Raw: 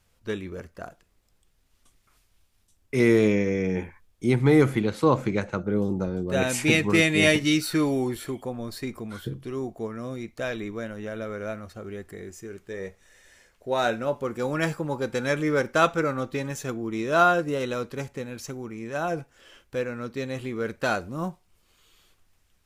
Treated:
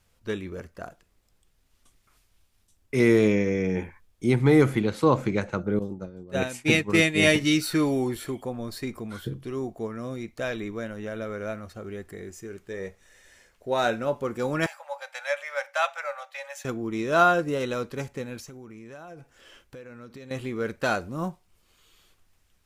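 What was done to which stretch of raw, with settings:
5.79–7.27 expander -20 dBFS
14.66–16.65 rippled Chebyshev high-pass 550 Hz, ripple 6 dB
18.4–20.31 compressor 8:1, threshold -40 dBFS

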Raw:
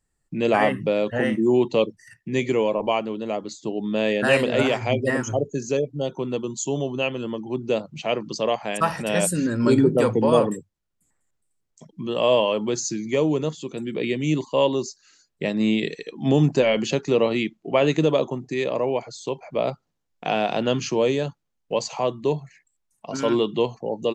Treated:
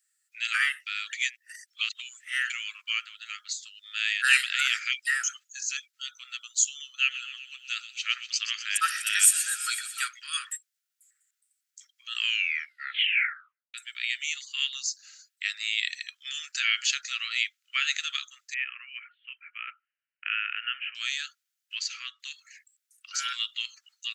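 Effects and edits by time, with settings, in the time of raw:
1.13–2.5 reverse
6.86–10.08 thin delay 0.124 s, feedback 72%, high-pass 2800 Hz, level -10.5 dB
12.18 tape stop 1.56 s
18.54–20.95 Chebyshev low-pass 3000 Hz, order 8
21.75–22.2 air absorption 110 m
whole clip: steep high-pass 1300 Hz 96 dB/oct; tilt +2.5 dB/oct

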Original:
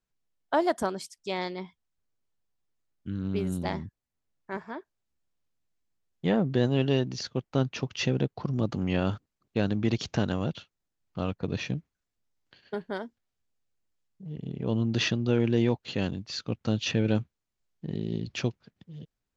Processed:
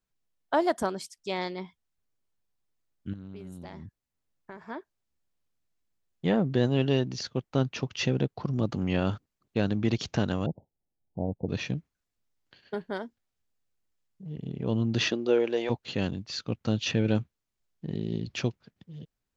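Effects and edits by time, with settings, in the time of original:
3.13–4.66 compressor 12:1, threshold -38 dBFS
10.46–11.49 steep low-pass 890 Hz 96 dB/oct
15.1–15.69 resonant high-pass 320 Hz -> 650 Hz, resonance Q 1.9

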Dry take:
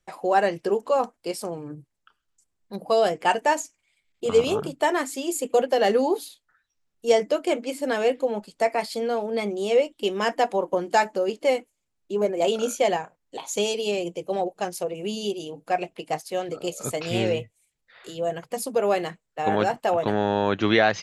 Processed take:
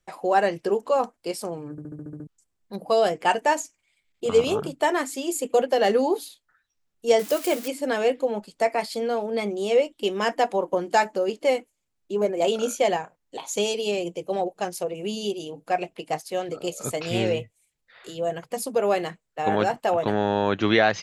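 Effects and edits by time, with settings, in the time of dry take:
1.71 stutter in place 0.07 s, 8 plays
7.19–7.68 switching spikes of -23 dBFS

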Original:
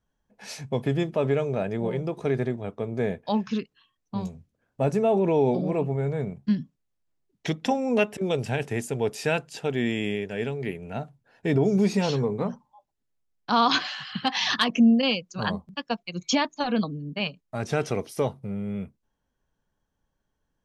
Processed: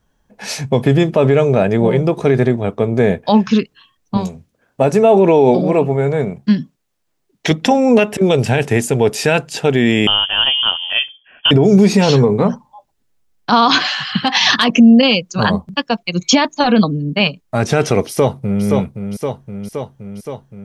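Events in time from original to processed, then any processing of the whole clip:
4.17–7.51 low shelf 170 Hz -10 dB
10.07–11.51 inverted band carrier 3300 Hz
18.07–18.64 echo throw 0.52 s, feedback 70%, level -7 dB
whole clip: maximiser +15.5 dB; gain -1 dB

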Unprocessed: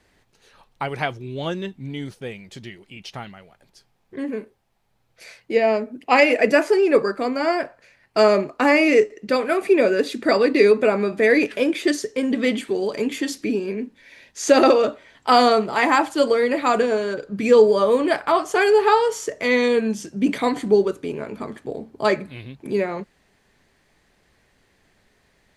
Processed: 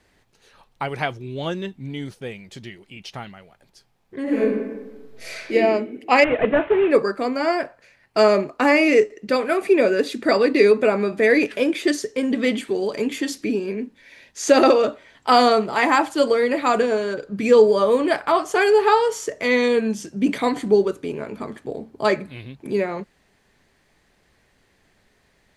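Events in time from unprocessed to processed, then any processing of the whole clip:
4.23–5.53 reverb throw, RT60 1.2 s, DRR -10 dB
6.24–6.91 CVSD 16 kbps

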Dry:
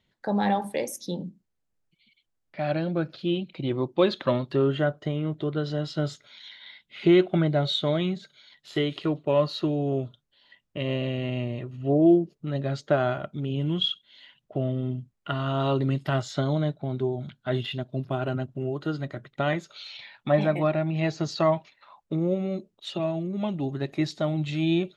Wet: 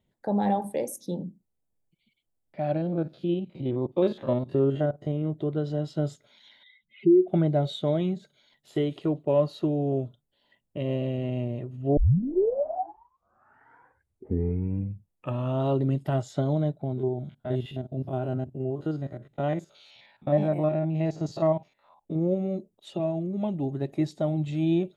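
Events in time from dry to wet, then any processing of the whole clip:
2.77–5.22 stepped spectrum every 50 ms
6.63–7.28 spectral contrast raised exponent 2.4
11.97 tape start 3.70 s
16.93–22.16 stepped spectrum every 50 ms
whole clip: band shelf 2600 Hz -10 dB 2.8 oct; notch 4200 Hz, Q 22

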